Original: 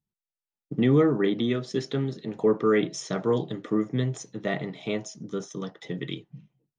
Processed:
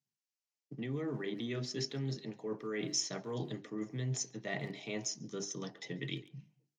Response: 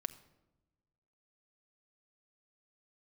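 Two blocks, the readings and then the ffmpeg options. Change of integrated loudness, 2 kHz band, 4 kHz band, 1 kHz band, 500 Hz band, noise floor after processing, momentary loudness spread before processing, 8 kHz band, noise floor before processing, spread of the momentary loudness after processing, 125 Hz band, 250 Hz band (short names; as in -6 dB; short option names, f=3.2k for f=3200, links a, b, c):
-12.0 dB, -8.5 dB, -3.0 dB, -14.5 dB, -15.5 dB, under -85 dBFS, 14 LU, +3.0 dB, under -85 dBFS, 8 LU, -10.0 dB, -14.0 dB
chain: -filter_complex "[0:a]bandreject=f=50:t=h:w=6,bandreject=f=100:t=h:w=6,bandreject=f=150:t=h:w=6,bandreject=f=200:t=h:w=6,bandreject=f=250:t=h:w=6,bandreject=f=300:t=h:w=6,bandreject=f=350:t=h:w=6,bandreject=f=400:t=h:w=6,areverse,acompressor=threshold=-29dB:ratio=10,areverse,highpass=f=120:w=0.5412,highpass=f=120:w=1.3066,equalizer=f=130:t=q:w=4:g=6,equalizer=f=180:t=q:w=4:g=-4,equalizer=f=490:t=q:w=4:g=-3,equalizer=f=1.3k:t=q:w=4:g=-7,equalizer=f=3.5k:t=q:w=4:g=-8,lowpass=f=6.2k:w=0.5412,lowpass=f=6.2k:w=1.3066,asplit=2[a][b];[b]adelay=140,highpass=300,lowpass=3.4k,asoftclip=type=hard:threshold=-32dB,volume=-19dB[c];[a][c]amix=inputs=2:normalize=0,crystalizer=i=4.5:c=0,volume=-5.5dB"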